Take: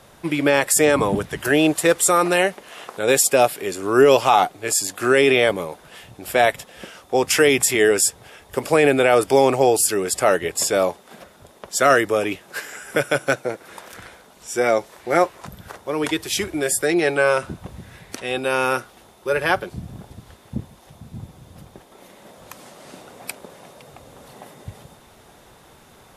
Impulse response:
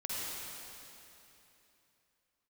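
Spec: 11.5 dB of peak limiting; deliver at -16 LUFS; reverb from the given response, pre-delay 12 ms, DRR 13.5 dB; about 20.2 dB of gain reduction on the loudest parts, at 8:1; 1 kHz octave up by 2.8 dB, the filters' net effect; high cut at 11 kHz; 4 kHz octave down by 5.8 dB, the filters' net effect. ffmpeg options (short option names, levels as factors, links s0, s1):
-filter_complex "[0:a]lowpass=11000,equalizer=f=1000:t=o:g=4.5,equalizer=f=4000:t=o:g=-8.5,acompressor=threshold=0.0316:ratio=8,alimiter=level_in=1.12:limit=0.0631:level=0:latency=1,volume=0.891,asplit=2[s0][s1];[1:a]atrim=start_sample=2205,adelay=12[s2];[s1][s2]afir=irnorm=-1:irlink=0,volume=0.133[s3];[s0][s3]amix=inputs=2:normalize=0,volume=11.2"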